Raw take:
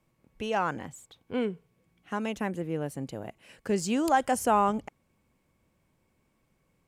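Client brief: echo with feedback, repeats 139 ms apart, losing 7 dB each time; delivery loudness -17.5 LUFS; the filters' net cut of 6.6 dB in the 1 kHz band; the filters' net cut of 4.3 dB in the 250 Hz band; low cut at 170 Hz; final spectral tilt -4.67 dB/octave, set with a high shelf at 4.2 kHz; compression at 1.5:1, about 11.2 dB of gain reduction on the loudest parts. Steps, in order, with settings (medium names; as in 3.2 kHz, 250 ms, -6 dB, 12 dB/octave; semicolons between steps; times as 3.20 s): high-pass 170 Hz; peaking EQ 250 Hz -3.5 dB; peaking EQ 1 kHz -8.5 dB; treble shelf 4.2 kHz -5.5 dB; compression 1.5:1, threshold -57 dBFS; feedback delay 139 ms, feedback 45%, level -7 dB; trim +26.5 dB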